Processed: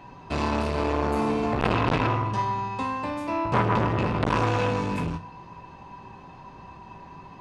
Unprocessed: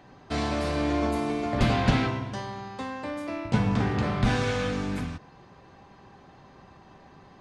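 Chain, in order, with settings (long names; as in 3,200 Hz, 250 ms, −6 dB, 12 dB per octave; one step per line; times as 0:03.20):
low-shelf EQ 210 Hz +7.5 dB
mains-hum notches 50/100 Hz
tuned comb filter 55 Hz, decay 0.25 s, harmonics all, mix 70%
hollow resonant body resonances 970/2,600 Hz, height 17 dB, ringing for 55 ms
saturating transformer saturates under 1,300 Hz
level +6 dB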